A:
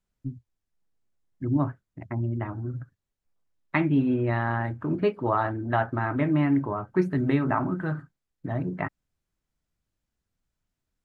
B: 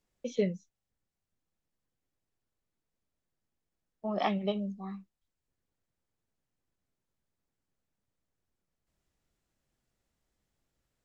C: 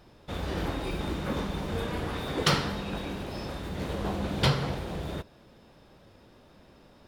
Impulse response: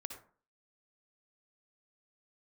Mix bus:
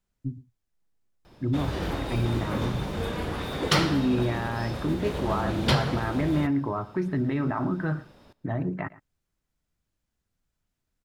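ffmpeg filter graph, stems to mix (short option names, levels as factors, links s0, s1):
-filter_complex "[0:a]alimiter=limit=0.1:level=0:latency=1:release=72,volume=1.19,asplit=2[s0][s1];[s1]volume=0.112[s2];[2:a]adelay=1250,volume=1.19,asplit=2[s3][s4];[s4]volume=0.0841[s5];[s2][s5]amix=inputs=2:normalize=0,aecho=0:1:114:1[s6];[s0][s3][s6]amix=inputs=3:normalize=0"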